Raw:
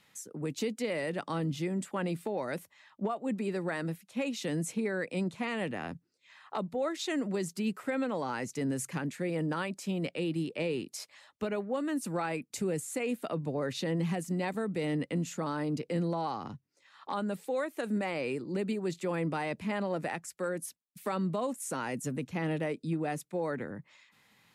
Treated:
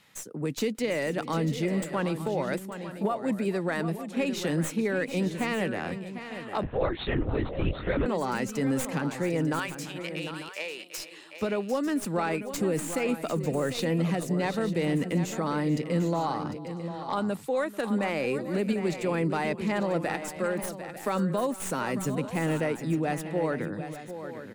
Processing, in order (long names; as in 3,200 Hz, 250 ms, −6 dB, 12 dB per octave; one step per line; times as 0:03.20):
stylus tracing distortion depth 0.046 ms
0:09.59–0:10.98: high-pass filter 900 Hz 12 dB per octave
multi-tap delay 440/749/896 ms −18.5/−10.5/−13.5 dB
0:06.63–0:08.06: linear-prediction vocoder at 8 kHz whisper
level +4.5 dB